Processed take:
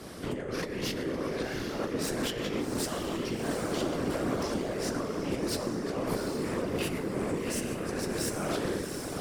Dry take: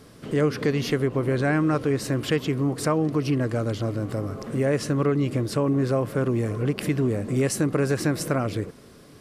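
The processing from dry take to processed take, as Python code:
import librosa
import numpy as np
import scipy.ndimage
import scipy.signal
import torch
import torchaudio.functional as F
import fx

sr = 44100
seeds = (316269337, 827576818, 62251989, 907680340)

p1 = fx.spec_trails(x, sr, decay_s=0.81)
p2 = scipy.signal.sosfilt(scipy.signal.ellip(4, 1.0, 40, 150.0, 'highpass', fs=sr, output='sos'), p1)
p3 = fx.over_compress(p2, sr, threshold_db=-30.0, ratio=-1.0)
p4 = 10.0 ** (-28.5 / 20.0) * np.tanh(p3 / 10.0 ** (-28.5 / 20.0))
p5 = p4 + fx.echo_diffused(p4, sr, ms=761, feedback_pct=41, wet_db=-5.0, dry=0)
y = fx.whisperise(p5, sr, seeds[0])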